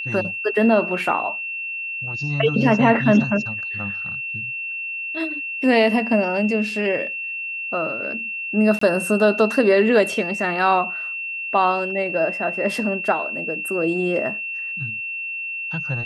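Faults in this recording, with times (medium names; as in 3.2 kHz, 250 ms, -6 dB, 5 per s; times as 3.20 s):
whine 2.7 kHz -26 dBFS
8.79–8.81 s: dropout 24 ms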